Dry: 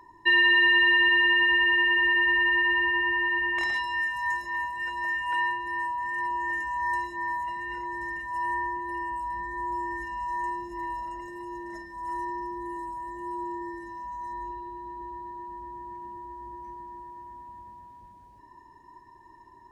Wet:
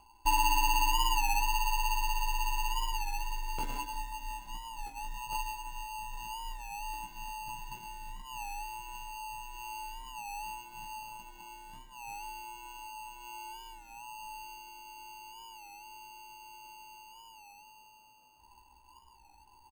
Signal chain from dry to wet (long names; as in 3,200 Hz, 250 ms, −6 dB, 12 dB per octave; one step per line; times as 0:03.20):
in parallel at −2 dB: downward compressor 20 to 1, threshold −34 dBFS, peak gain reduction 17.5 dB
on the sum: floating-point word with a short mantissa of 6 bits
resonant band-pass 2,700 Hz, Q 2.1
decimation without filtering 24×
double-tracking delay 16 ms −4 dB
on a send: single-tap delay 192 ms −14 dB
on the sum: wow of a warped record 33 1/3 rpm, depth 100 cents